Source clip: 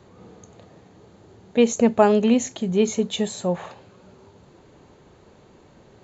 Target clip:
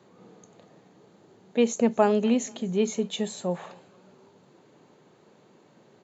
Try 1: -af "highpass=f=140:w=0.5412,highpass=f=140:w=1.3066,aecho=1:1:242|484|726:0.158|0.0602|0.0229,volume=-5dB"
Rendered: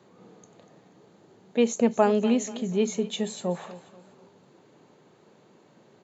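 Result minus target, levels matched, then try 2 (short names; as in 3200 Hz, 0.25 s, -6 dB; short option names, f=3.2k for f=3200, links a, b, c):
echo-to-direct +9.5 dB
-af "highpass=f=140:w=0.5412,highpass=f=140:w=1.3066,aecho=1:1:242|484:0.0531|0.0202,volume=-5dB"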